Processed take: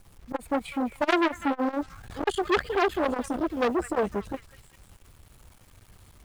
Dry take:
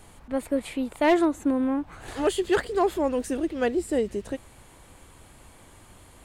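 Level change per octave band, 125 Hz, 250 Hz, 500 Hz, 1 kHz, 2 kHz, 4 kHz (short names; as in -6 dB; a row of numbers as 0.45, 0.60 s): -0.5, -3.5, -2.5, +2.0, +2.0, +1.5 dB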